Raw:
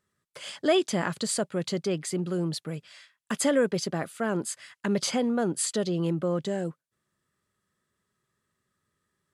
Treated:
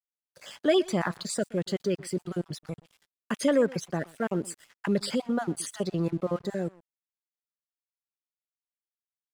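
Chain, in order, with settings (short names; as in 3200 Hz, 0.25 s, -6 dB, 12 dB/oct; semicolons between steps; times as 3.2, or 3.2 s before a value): random spectral dropouts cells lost 32%; high shelf 2500 Hz -4 dB; echo 0.123 s -20 dB; crossover distortion -52.5 dBFS; gain +1 dB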